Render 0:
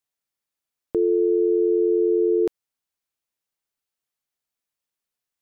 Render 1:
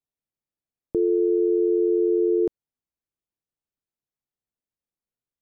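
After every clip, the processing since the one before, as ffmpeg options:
-af "tiltshelf=f=720:g=8.5,volume=0.531"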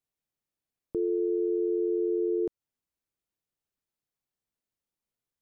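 -af "alimiter=limit=0.0708:level=0:latency=1:release=184,volume=1.19"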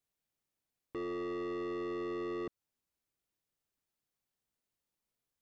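-af "asoftclip=type=tanh:threshold=0.0133,volume=1.12"

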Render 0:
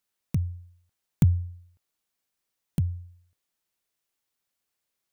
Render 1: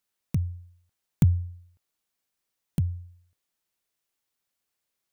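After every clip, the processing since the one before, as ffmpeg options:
-af anull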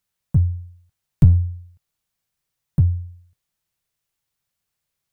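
-af "aeval=exprs='clip(val(0),-1,0.0596)':c=same,lowshelf=f=190:t=q:w=1.5:g=8,volume=1.26"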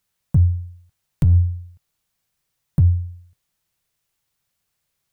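-af "alimiter=limit=0.237:level=0:latency=1:release=42,volume=1.68"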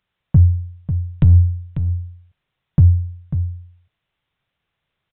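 -filter_complex "[0:a]asplit=2[s0][s1];[s1]aecho=0:1:544:0.316[s2];[s0][s2]amix=inputs=2:normalize=0,aresample=8000,aresample=44100,volume=1.58"

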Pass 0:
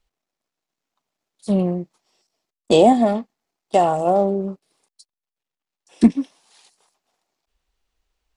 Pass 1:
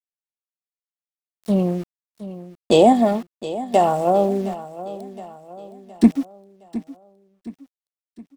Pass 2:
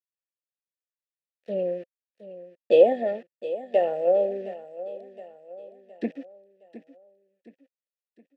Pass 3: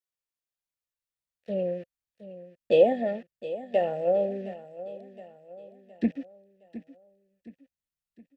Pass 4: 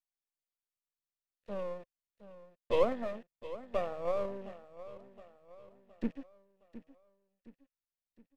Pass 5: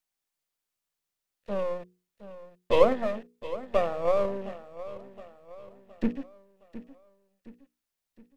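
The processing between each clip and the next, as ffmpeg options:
-af "aeval=exprs='val(0)*gte(abs(val(0)),0.0158)':c=same,aecho=1:1:716|1432|2148|2864:0.178|0.0818|0.0376|0.0173"
-filter_complex "[0:a]acrossover=split=6000[s0][s1];[s1]acompressor=threshold=0.00224:ratio=4:attack=1:release=60[s2];[s0][s2]amix=inputs=2:normalize=0,asplit=3[s3][s4][s5];[s3]bandpass=f=530:t=q:w=8,volume=1[s6];[s4]bandpass=f=1840:t=q:w=8,volume=0.501[s7];[s5]bandpass=f=2480:t=q:w=8,volume=0.355[s8];[s6][s7][s8]amix=inputs=3:normalize=0,volume=1.58"
-af "asubboost=boost=8:cutoff=150"
-af "aeval=exprs='if(lt(val(0),0),0.251*val(0),val(0))':c=same,volume=0.531"
-af "bandreject=f=60:t=h:w=6,bandreject=f=120:t=h:w=6,bandreject=f=180:t=h:w=6,bandreject=f=240:t=h:w=6,bandreject=f=300:t=h:w=6,bandreject=f=360:t=h:w=6,bandreject=f=420:t=h:w=6,bandreject=f=480:t=h:w=6,volume=2.66"

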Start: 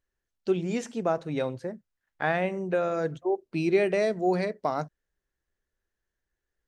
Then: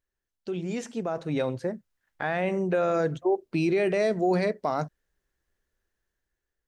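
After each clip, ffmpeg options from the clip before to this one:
-af "alimiter=limit=0.0841:level=0:latency=1:release=15,dynaudnorm=f=460:g=5:m=2.51,volume=0.708"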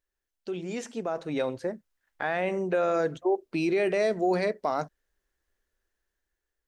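-af "equalizer=f=130:w=1.1:g=-9"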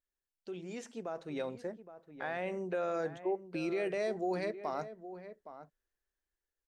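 -filter_complex "[0:a]asplit=2[s0][s1];[s1]adelay=816.3,volume=0.251,highshelf=f=4000:g=-18.4[s2];[s0][s2]amix=inputs=2:normalize=0,volume=0.355"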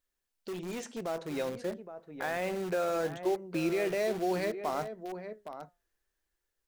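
-filter_complex "[0:a]flanger=delay=3.9:depth=2.2:regen=87:speed=0.41:shape=sinusoidal,asplit=2[s0][s1];[s1]aeval=exprs='(mod(150*val(0)+1,2)-1)/150':c=same,volume=0.355[s2];[s0][s2]amix=inputs=2:normalize=0,volume=2.66"

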